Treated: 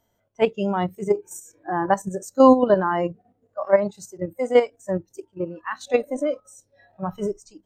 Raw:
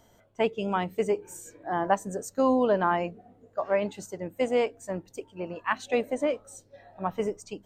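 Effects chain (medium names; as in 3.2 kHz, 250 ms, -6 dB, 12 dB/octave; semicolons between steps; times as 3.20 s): level held to a coarse grid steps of 11 dB; spectral noise reduction 15 dB; harmonic-percussive split harmonic +6 dB; trim +6 dB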